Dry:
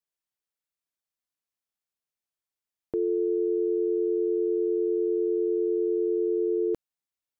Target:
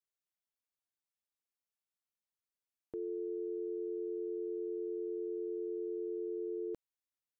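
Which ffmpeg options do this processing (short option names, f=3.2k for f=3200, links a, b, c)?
-af "alimiter=level_in=2dB:limit=-24dB:level=0:latency=1:release=57,volume=-2dB,volume=-7dB"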